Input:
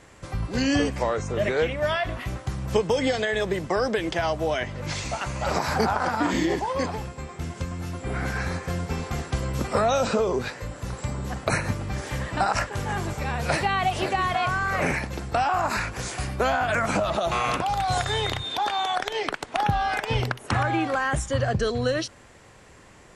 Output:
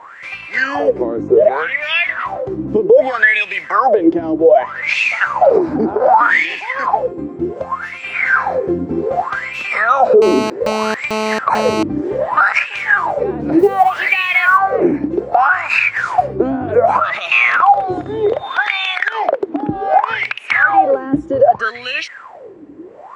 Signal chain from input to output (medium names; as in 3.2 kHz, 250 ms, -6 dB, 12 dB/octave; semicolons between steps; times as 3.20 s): 15.51–17.24 s: peaking EQ 100 Hz +13 dB 0.91 oct; compression 1.5:1, threshold -28 dBFS, peak gain reduction 4.5 dB; wah-wah 0.65 Hz 290–2600 Hz, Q 14; 10.22–11.83 s: mobile phone buzz -49 dBFS; 13.59–14.58 s: companded quantiser 8-bit; loudness maximiser +32 dB; trim -1 dB